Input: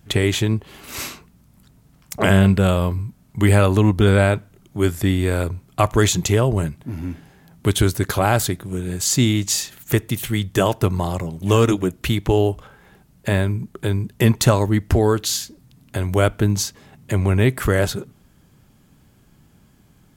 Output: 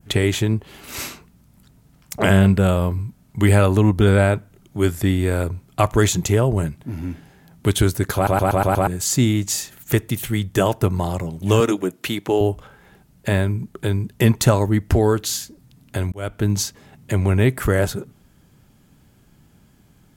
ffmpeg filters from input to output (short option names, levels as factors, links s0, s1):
-filter_complex "[0:a]asettb=1/sr,asplit=3[s0][s1][s2];[s0]atrim=end=11.604[s3];[s1]atrim=start=11.6:end=12.41,asetpts=PTS-STARTPTS,afade=t=in:d=0.004:c=qsin,afade=t=out:st=0.806:d=0.004:c=qsin,highpass=230[s4];[s2]atrim=start=12.406[s5];[s3][s4]acrossfade=d=0.004:c1=hsin:c2=qsin[s6];[s6][s5]acrossfade=d=0.004:c1=qsin:c2=hsin,asplit=8[s7][s8][s9][s10][s11][s12][s13][s14];[s7]atrim=end=8.272[s15];[s8]atrim=start=8.148:end=8.272[s16];[s9]atrim=start=8.148:end=8.272[s17];[s10]atrim=start=8.148:end=8.272[s18];[s11]atrim=start=8.148:end=8.272[s19];[s12]atrim=start=8.148:end=8.272[s20];[s13]atrim=start=8.868:end=16.12,asetpts=PTS-STARTPTS,afade=t=out:st=7.248:d=0.004:c=hsin[s21];[s14]atrim=start=16.12,asetpts=PTS-STARTPTS,afade=t=in:d=0.41[s22];[s15][s16]acrossfade=d=0.004:c1=hsin:c2=hsin[s23];[s23][s17]acrossfade=d=0.004:c1=hsin:c2=hsin[s24];[s24][s18]acrossfade=d=0.004:c1=hsin:c2=hsin[s25];[s25][s19]acrossfade=d=0.004:c1=hsin:c2=hsin[s26];[s26][s20]acrossfade=d=0.004:c1=hsin:c2=hsin[s27];[s21][s22]concat=n=2:v=0:a=1[s28];[s27][s28]acrossfade=d=0.004:c1=hsin:c2=hsin,bandreject=f=1100:w=23,adynamicequalizer=threshold=0.0126:dfrequency=3700:dqfactor=0.86:tfrequency=3700:tqfactor=0.86:attack=5:release=100:ratio=0.375:range=3.5:mode=cutabove:tftype=bell"